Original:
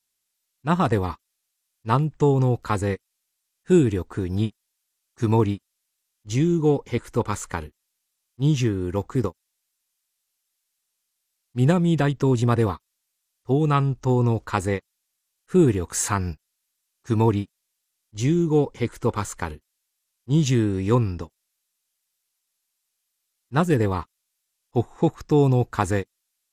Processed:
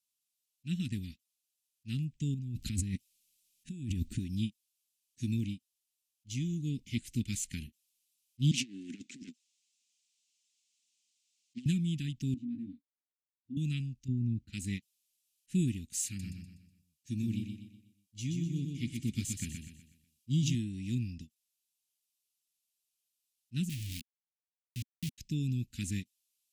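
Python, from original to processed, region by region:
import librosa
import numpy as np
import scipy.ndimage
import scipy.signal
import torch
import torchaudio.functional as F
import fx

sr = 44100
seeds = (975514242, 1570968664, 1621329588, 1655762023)

y = fx.chain(x, sr, fx.low_shelf(hz=290.0, db=8.0),
    fx.over_compress(threshold_db=-25.0, ratio=-1.0), at=(2.34, 4.19))
y = fx.chain(y, sr, fx.self_delay(depth_ms=0.54),
    fx.cheby1_bandpass(low_hz=240.0, high_hz=7400.0, order=3),
    fx.over_compress(threshold_db=-32.0, ratio=-0.5), at=(8.51, 11.66))
y = fx.chain(y, sr, fx.double_bandpass(hz=410.0, octaves=1.1),
    fx.doubler(ms=21.0, db=-3.5), at=(12.34, 13.57))
y = fx.chain(y, sr, fx.highpass(hz=130.0, slope=12),
    fx.tilt_eq(slope=-4.5), at=(14.08, 14.53))
y = fx.chain(y, sr, fx.notch_comb(f0_hz=510.0),
    fx.echo_feedback(ms=123, feedback_pct=41, wet_db=-5.0), at=(16.07, 20.55))
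y = fx.chain(y, sr, fx.tone_stack(knobs='6-0-2'),
    fx.comb(ms=1.6, depth=0.49),
    fx.quant_companded(bits=2), at=(23.69, 25.18))
y = scipy.signal.sosfilt(scipy.signal.ellip(3, 1.0, 50, [240.0, 2600.0], 'bandstop', fs=sr, output='sos'), y)
y = fx.low_shelf(y, sr, hz=120.0, db=-10.0)
y = fx.rider(y, sr, range_db=10, speed_s=0.5)
y = F.gain(torch.from_numpy(y), -7.0).numpy()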